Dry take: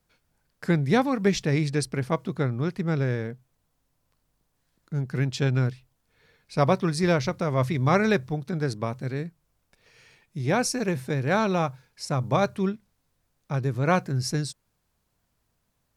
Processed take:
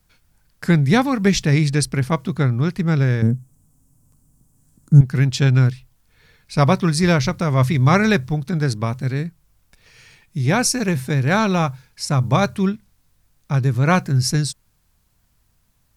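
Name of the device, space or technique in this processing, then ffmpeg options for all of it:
smiley-face EQ: -filter_complex "[0:a]asettb=1/sr,asplit=3[a][b][c];[a]atrim=end=3.224[d];[b]atrim=start=3.22:end=5.01,asetpts=PTS-STARTPTS,afade=t=in:d=0.004:c=qsin,afade=t=out:st=1.786:d=0.004:c=qsin,equalizer=f=125:t=o:w=1:g=9,equalizer=f=250:t=o:w=1:g=10,equalizer=f=2k:t=o:w=1:g=-10,equalizer=f=4k:t=o:w=1:g=-11,equalizer=f=8k:t=o:w=1:g=11[e];[c]atrim=start=5.006[f];[d][e]acrossfade=d=0.004:c1=hsin:c2=qsin[g];[g][f]acrossfade=d=0.004:c1=qsin:c2=hsin,lowshelf=f=89:g=8,equalizer=f=490:t=o:w=1.6:g=-5.5,highshelf=f=6.7k:g=4,volume=7.5dB"

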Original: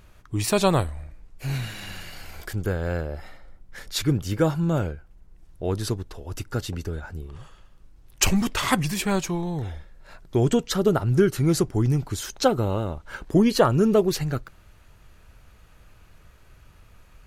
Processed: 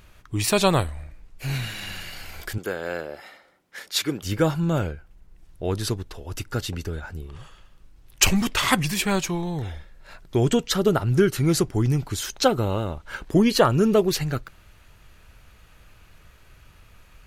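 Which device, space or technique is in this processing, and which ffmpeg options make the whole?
presence and air boost: -filter_complex "[0:a]asettb=1/sr,asplit=3[a][b][c];[a]atrim=end=2.584[d];[b]atrim=start=2.58:end=4.23,asetpts=PTS-STARTPTS,afade=t=in:d=0.004:c=qsin,afade=t=out:st=1.646:d=0.004:c=qsin,highpass=290[e];[c]atrim=start=4.226[f];[d][e]acrossfade=d=0.004:c1=hsin:c2=qsin[g];[g][f]acrossfade=d=0.004:c1=qsin:c2=hsin,equalizer=f=2.8k:t=o:w=1.9:g=4.5,highshelf=f=10k:g=4.5"

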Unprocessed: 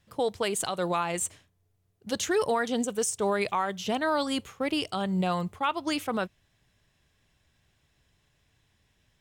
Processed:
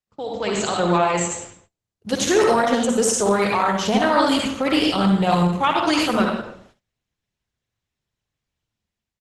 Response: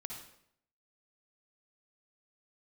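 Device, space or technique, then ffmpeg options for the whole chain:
speakerphone in a meeting room: -filter_complex "[0:a]asettb=1/sr,asplit=3[a][b][c];[a]atrim=end=5.104[d];[b]atrim=start=5.1:end=5.74,asetpts=PTS-STARTPTS,afade=t=in:d=0.004:c=qsin,afade=t=out:st=0.636:d=0.004:c=qsin,adynamicequalizer=threshold=0.00158:dfrequency=6400:dqfactor=2.4:tfrequency=6400:tqfactor=2.4:attack=5:release=100:ratio=0.375:range=3:mode=boostabove:tftype=bell[e];[c]atrim=start=5.736[f];[d][e]acrossfade=d=0.004:c1=hsin:c2=qsin[g];[g][f]acrossfade=d=0.004:c1=qsin:c2=hsin[h];[1:a]atrim=start_sample=2205[i];[h][i]afir=irnorm=-1:irlink=0,asplit=2[j][k];[k]adelay=150,highpass=300,lowpass=3.4k,asoftclip=type=hard:threshold=-26.5dB,volume=-25dB[l];[j][l]amix=inputs=2:normalize=0,dynaudnorm=f=140:g=7:m=13dB,agate=range=-25dB:threshold=-51dB:ratio=16:detection=peak" -ar 48000 -c:a libopus -b:a 12k

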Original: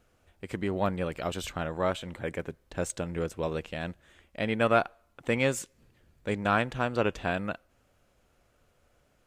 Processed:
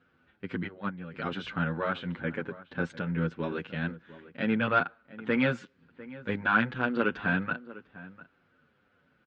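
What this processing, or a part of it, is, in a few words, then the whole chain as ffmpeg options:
barber-pole flanger into a guitar amplifier: -filter_complex "[0:a]asplit=3[a][b][c];[a]afade=t=out:st=0.66:d=0.02[d];[b]agate=range=-13dB:threshold=-24dB:ratio=16:detection=peak,afade=t=in:st=0.66:d=0.02,afade=t=out:st=1.13:d=0.02[e];[c]afade=t=in:st=1.13:d=0.02[f];[d][e][f]amix=inputs=3:normalize=0,asplit=2[g][h];[h]adelay=8,afreqshift=-1.9[i];[g][i]amix=inputs=2:normalize=1,asoftclip=type=tanh:threshold=-18.5dB,highpass=110,equalizer=f=170:t=q:w=4:g=7,equalizer=f=250:t=q:w=4:g=7,equalizer=f=650:t=q:w=4:g=-8,equalizer=f=1.5k:t=q:w=4:g=10,lowpass=f=3.9k:w=0.5412,lowpass=f=3.9k:w=1.3066,asplit=2[j][k];[k]adelay=699.7,volume=-17dB,highshelf=f=4k:g=-15.7[l];[j][l]amix=inputs=2:normalize=0,volume=2dB"

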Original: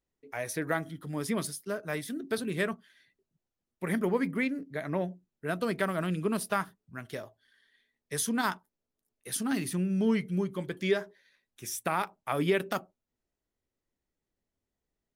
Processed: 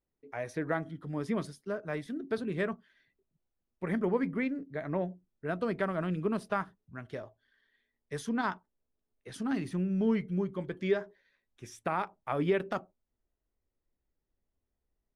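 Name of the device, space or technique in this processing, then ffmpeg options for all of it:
through cloth: -filter_complex "[0:a]asettb=1/sr,asplit=3[a][b][c];[a]atrim=end=8.294[d];[b]atrim=start=8.29:end=9.34,asetpts=PTS-STARTPTS,afade=t=in:d=0.004:c=qsin,afade=t=out:st=1.046:d=0.004:c=qsin,lowpass=7.1k[e];[c]atrim=start=9.336[f];[d][e]acrossfade=d=0.004:c1=hsin:c2=qsin[g];[g][f]acrossfade=d=0.004:c1=qsin:c2=hsin,lowpass=7.6k,highshelf=f=2.6k:g=-13,asubboost=boost=2:cutoff=88"

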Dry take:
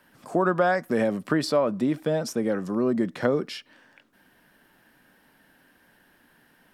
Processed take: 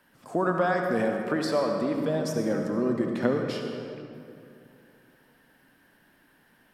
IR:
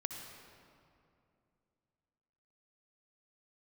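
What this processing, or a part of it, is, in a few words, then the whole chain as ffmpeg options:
stairwell: -filter_complex "[1:a]atrim=start_sample=2205[a];[0:a][a]afir=irnorm=-1:irlink=0,asettb=1/sr,asplit=3[b][c][d];[b]atrim=end=1.084[e];[c]atrim=start=1.08:end=1.98,asetpts=PTS-STARTPTS,afade=t=in:d=0.004:c=qsin,afade=t=out:st=0.896:d=0.004:c=qsin,bass=f=250:g=-5,treble=f=4k:g=-2[f];[d]atrim=start=1.976[g];[e][f]acrossfade=d=0.004:c1=hsin:c2=qsin[h];[h][g]acrossfade=d=0.004:c1=qsin:c2=hsin,volume=-1.5dB"

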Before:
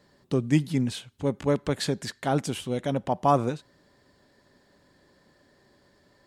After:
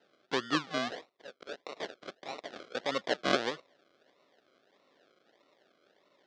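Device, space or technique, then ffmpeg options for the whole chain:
circuit-bent sampling toy: -filter_complex "[0:a]asettb=1/sr,asplit=3[a][b][c];[a]atrim=end=0.964[d];[b]atrim=start=0.96:end=2.75,asetpts=PTS-STARTPTS,afade=t=in:d=0.004:c=qsin,afade=t=out:st=1.786:d=0.004:c=qsin,highpass=1.3k[e];[c]atrim=start=2.746[f];[d][e]acrossfade=d=0.004:c1=hsin:c2=qsin[g];[g][f]acrossfade=d=0.004:c1=qsin:c2=hsin,acrusher=samples=38:mix=1:aa=0.000001:lfo=1:lforange=22.8:lforate=1.6,highpass=500,equalizer=f=880:t=q:w=4:g=-7,equalizer=f=2.5k:t=q:w=4:g=-4,equalizer=f=3.5k:t=q:w=4:g=3,lowpass=f=5.2k:w=0.5412,lowpass=f=5.2k:w=1.3066"

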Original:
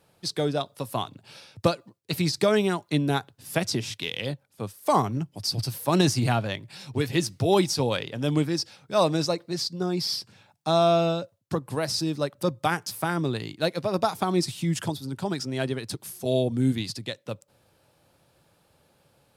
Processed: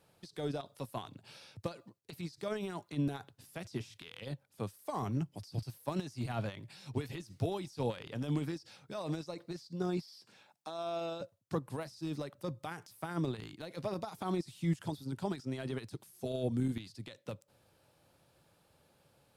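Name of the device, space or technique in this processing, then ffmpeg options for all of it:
de-esser from a sidechain: -filter_complex "[0:a]asettb=1/sr,asplit=3[a][b][c];[a]atrim=end=10.024[d];[b]atrim=start=10.02:end=11.21,asetpts=PTS-STARTPTS,afade=t=in:d=0.004:c=qsin,afade=t=out:st=1.186:d=0.004:c=qsin,highpass=270[e];[c]atrim=start=11.206[f];[d][e]acrossfade=d=0.004:c1=hsin:c2=qsin[g];[g][f]acrossfade=d=0.004:c1=qsin:c2=hsin,asplit=2[h][i];[i]highpass=5.4k,apad=whole_len=854154[j];[h][j]sidechaincompress=threshold=-52dB:ratio=12:attack=2.2:release=26,volume=-5dB"

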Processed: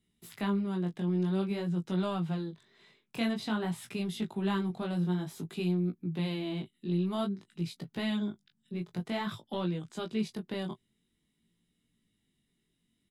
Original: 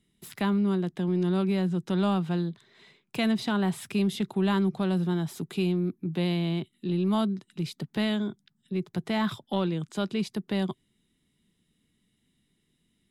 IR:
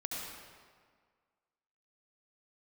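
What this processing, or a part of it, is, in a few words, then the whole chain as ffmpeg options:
double-tracked vocal: -filter_complex "[0:a]asplit=2[a][b];[b]adelay=18,volume=-13dB[c];[a][c]amix=inputs=2:normalize=0,flanger=delay=16.5:depth=6.4:speed=0.51,volume=-2.5dB"

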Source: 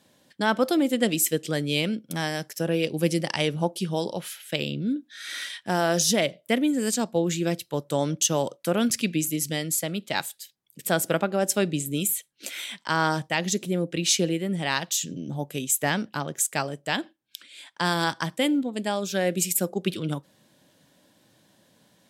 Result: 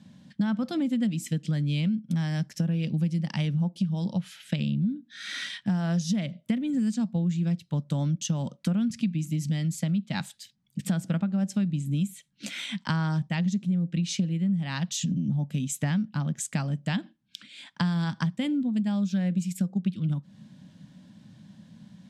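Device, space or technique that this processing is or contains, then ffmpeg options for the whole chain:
jukebox: -af "lowpass=6.3k,lowshelf=f=280:t=q:w=3:g=11.5,acompressor=threshold=-25dB:ratio=6"

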